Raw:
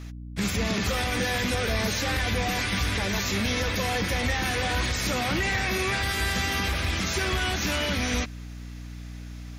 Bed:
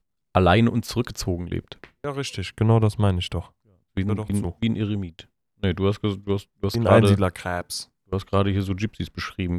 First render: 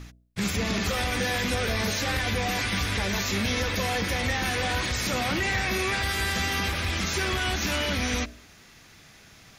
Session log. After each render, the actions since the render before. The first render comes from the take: de-hum 60 Hz, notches 11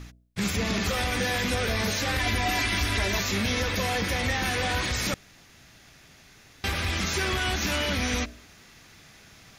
2.19–3.2 comb 3 ms; 5.14–6.64 room tone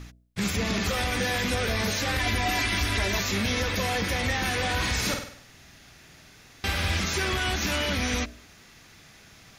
4.75–7 flutter echo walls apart 8.5 m, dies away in 0.58 s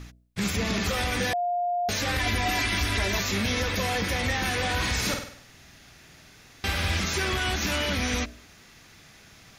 1.33–1.89 bleep 706 Hz -23.5 dBFS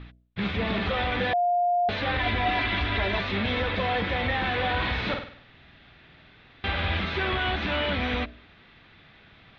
elliptic low-pass 3700 Hz, stop band 70 dB; dynamic EQ 700 Hz, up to +4 dB, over -37 dBFS, Q 1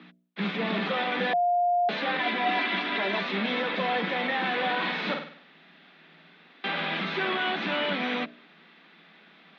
Chebyshev high-pass 160 Hz, order 10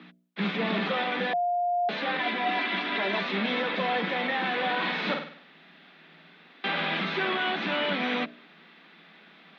vocal rider 0.5 s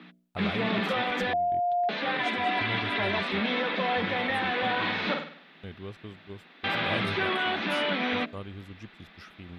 add bed -19 dB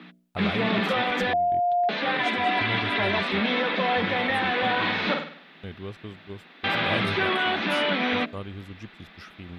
gain +3.5 dB

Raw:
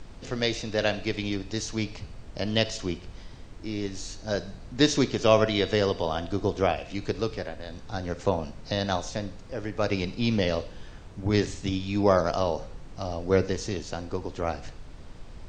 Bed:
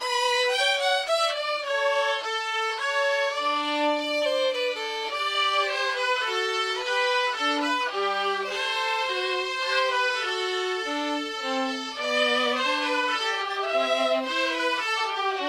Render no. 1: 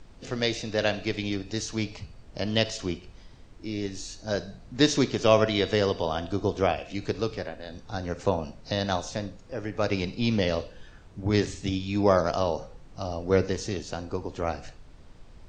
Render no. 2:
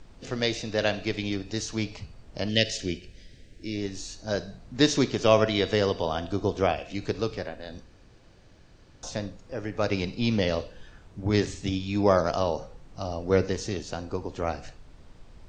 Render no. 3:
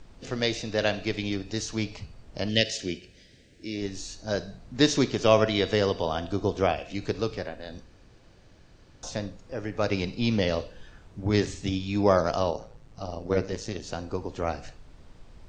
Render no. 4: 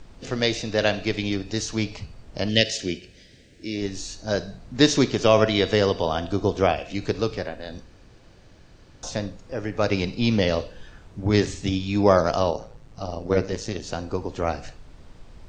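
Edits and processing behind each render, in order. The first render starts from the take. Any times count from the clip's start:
noise print and reduce 6 dB
2.49–3.76 EQ curve 570 Hz 0 dB, 1100 Hz -26 dB, 1700 Hz +3 dB; 7.84–9.03 room tone
2.61–3.82 HPF 150 Hz 6 dB/oct; 12.51–13.83 AM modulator 110 Hz, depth 55%
gain +4 dB; limiter -3 dBFS, peak gain reduction 2.5 dB

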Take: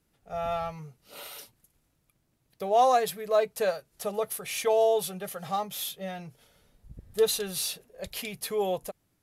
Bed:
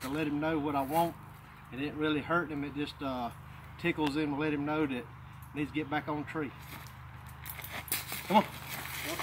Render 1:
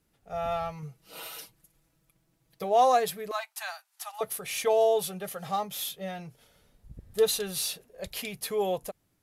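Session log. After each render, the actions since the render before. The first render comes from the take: 0.82–2.64 comb 6.1 ms, depth 73%; 3.31–4.21 steep high-pass 740 Hz 72 dB/oct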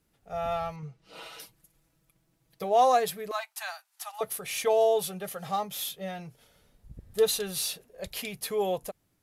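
0.76–1.4 air absorption 89 m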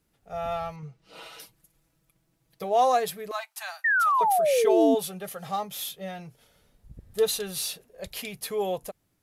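3.84–4.95 painted sound fall 250–1900 Hz -22 dBFS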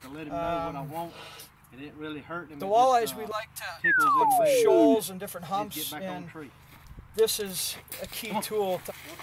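add bed -6.5 dB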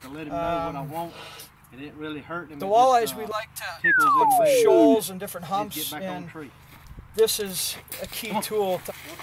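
gain +3.5 dB

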